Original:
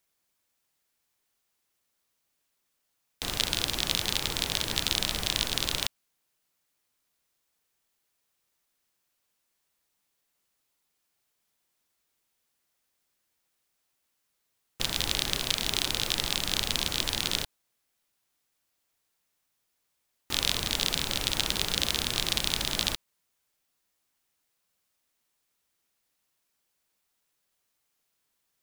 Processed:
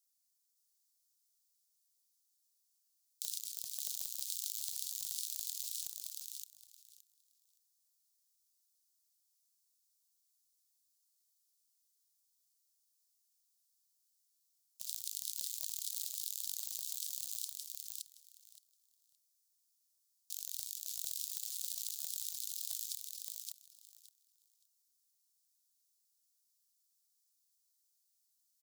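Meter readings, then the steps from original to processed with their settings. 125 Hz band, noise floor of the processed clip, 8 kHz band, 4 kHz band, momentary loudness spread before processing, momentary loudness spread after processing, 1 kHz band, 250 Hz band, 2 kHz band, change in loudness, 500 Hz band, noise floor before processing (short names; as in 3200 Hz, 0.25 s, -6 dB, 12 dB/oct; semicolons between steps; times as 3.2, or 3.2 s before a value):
under -40 dB, -79 dBFS, -6.5 dB, -19.5 dB, 4 LU, 10 LU, under -40 dB, under -40 dB, under -30 dB, -12.0 dB, under -40 dB, -78 dBFS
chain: tracing distortion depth 0.21 ms; inverse Chebyshev high-pass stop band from 1400 Hz, stop band 60 dB; negative-ratio compressor -39 dBFS, ratio -1; on a send: feedback echo 0.569 s, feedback 17%, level -3 dB; on the sum: gain -5 dB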